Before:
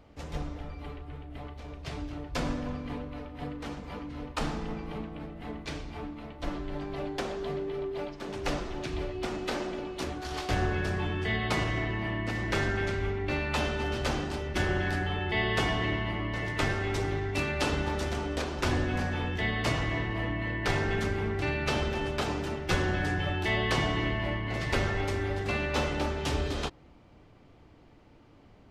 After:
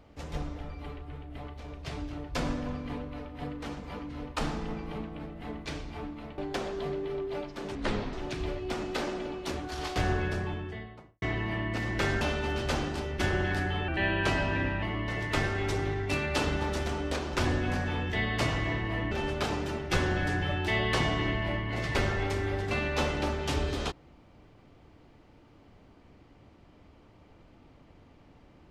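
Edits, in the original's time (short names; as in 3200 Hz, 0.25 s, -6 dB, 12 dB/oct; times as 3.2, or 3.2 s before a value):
6.38–7.02 cut
8.39–8.66 speed 71%
10.64–11.75 studio fade out
12.74–13.57 cut
15.24–16.08 speed 89%
20.37–21.89 cut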